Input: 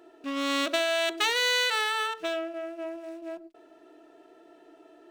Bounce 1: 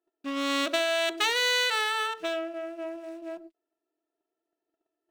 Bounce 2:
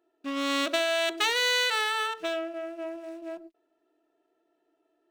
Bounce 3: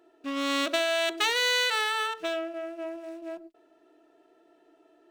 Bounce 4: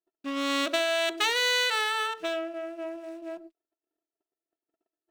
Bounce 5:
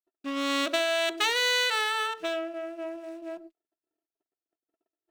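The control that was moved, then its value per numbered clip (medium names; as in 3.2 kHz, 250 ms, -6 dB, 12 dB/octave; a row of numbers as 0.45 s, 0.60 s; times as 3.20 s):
gate, range: -32 dB, -19 dB, -7 dB, -44 dB, -57 dB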